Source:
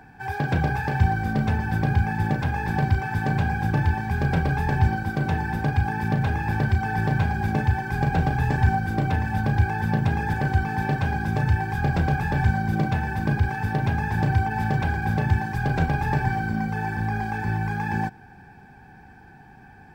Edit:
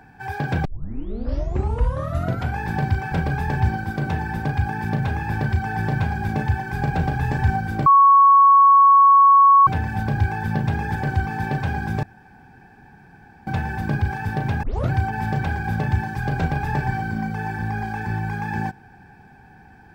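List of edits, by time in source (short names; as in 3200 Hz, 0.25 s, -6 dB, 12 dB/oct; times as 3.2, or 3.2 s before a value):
0.65 tape start 1.94 s
3.12–4.31 cut
9.05 add tone 1110 Hz -8.5 dBFS 1.81 s
11.41–12.85 room tone
14.01 tape start 0.28 s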